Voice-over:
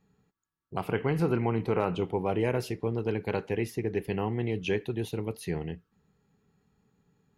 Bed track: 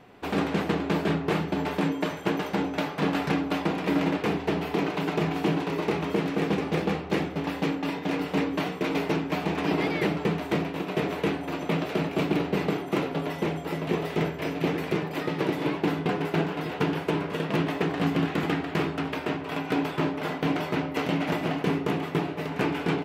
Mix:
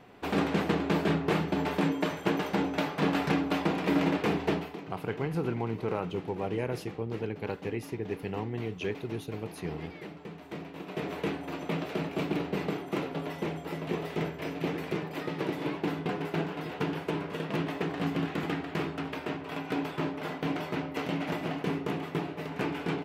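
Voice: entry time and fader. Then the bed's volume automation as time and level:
4.15 s, −4.5 dB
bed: 0:04.53 −1.5 dB
0:04.82 −17.5 dB
0:10.29 −17.5 dB
0:11.16 −5.5 dB

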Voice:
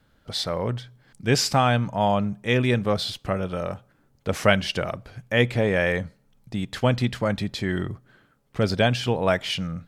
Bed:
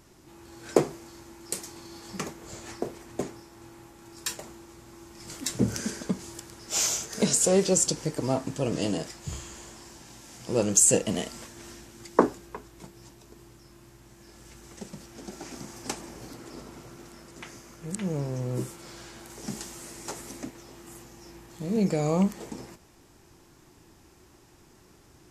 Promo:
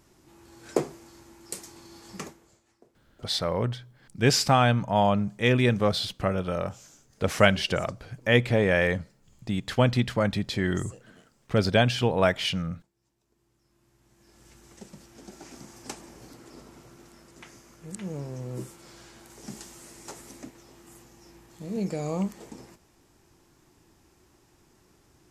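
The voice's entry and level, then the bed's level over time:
2.95 s, −0.5 dB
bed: 0:02.25 −4 dB
0:02.65 −27 dB
0:12.98 −27 dB
0:14.46 −5 dB

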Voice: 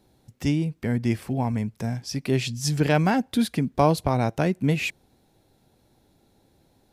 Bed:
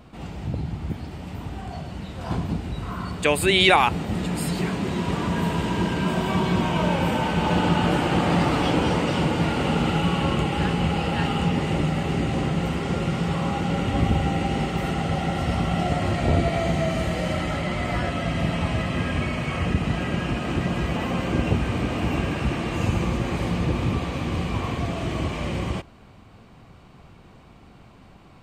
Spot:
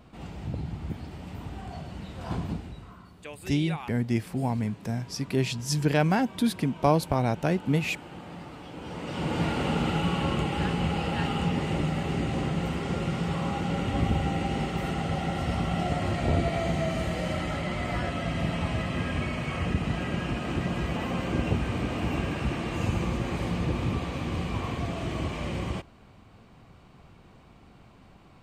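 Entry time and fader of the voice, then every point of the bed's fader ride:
3.05 s, −2.5 dB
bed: 0:02.50 −5 dB
0:03.10 −21.5 dB
0:08.70 −21.5 dB
0:09.37 −4.5 dB

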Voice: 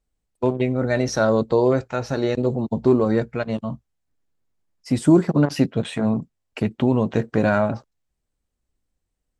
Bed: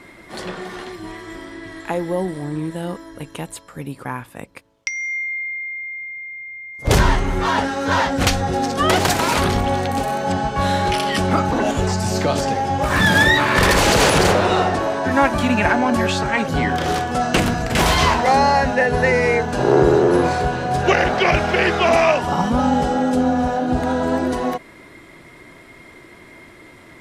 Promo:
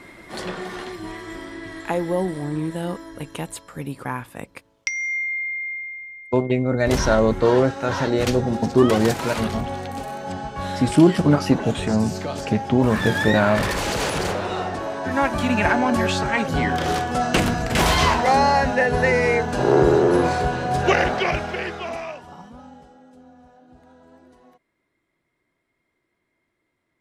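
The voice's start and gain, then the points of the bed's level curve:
5.90 s, +1.0 dB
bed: 0:05.72 −0.5 dB
0:06.27 −9.5 dB
0:14.53 −9.5 dB
0:15.65 −2 dB
0:21.01 −2 dB
0:22.99 −31 dB

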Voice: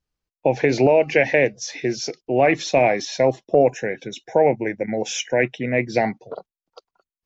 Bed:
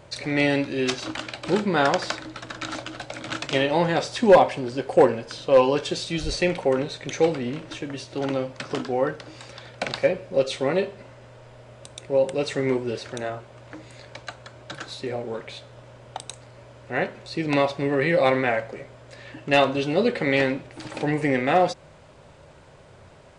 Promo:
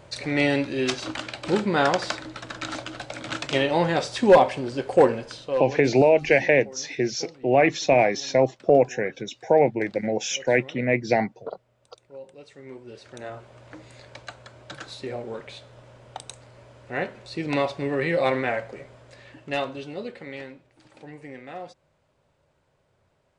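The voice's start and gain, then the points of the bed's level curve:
5.15 s, −1.5 dB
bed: 0:05.24 −0.5 dB
0:06.00 −21 dB
0:12.57 −21 dB
0:13.45 −3 dB
0:18.97 −3 dB
0:20.57 −18.5 dB

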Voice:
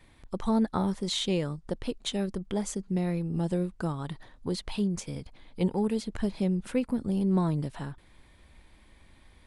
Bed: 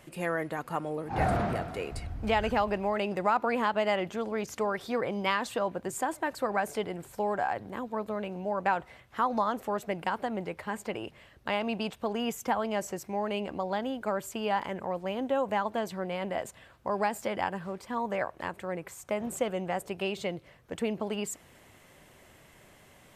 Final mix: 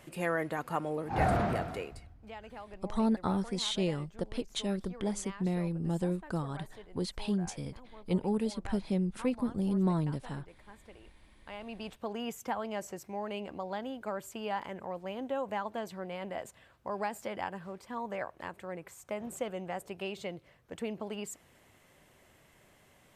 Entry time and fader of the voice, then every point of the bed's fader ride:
2.50 s, −3.0 dB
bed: 0:01.73 −0.5 dB
0:02.18 −19.5 dB
0:11.28 −19.5 dB
0:11.98 −6 dB

